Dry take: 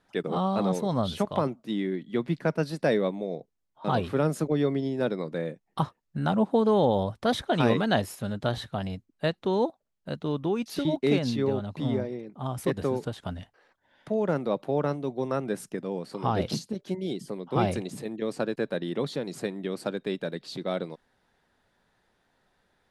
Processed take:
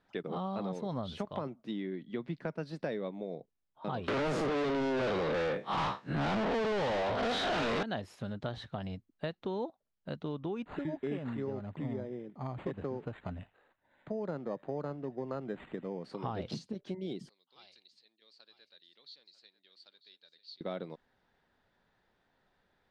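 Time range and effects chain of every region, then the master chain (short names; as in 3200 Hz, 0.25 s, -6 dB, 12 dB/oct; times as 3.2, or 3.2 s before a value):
4.08–7.83 time blur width 0.106 s + HPF 89 Hz 24 dB/oct + overdrive pedal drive 41 dB, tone 4700 Hz, clips at -10 dBFS
10.62–16.04 thin delay 75 ms, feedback 64%, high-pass 5000 Hz, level -9 dB + decimation joined by straight lines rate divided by 8×
17.29–20.61 band-pass 4400 Hz, Q 7 + echo 0.945 s -14.5 dB
whole clip: LPF 4800 Hz 12 dB/oct; compressor 3:1, threshold -31 dBFS; gain -4 dB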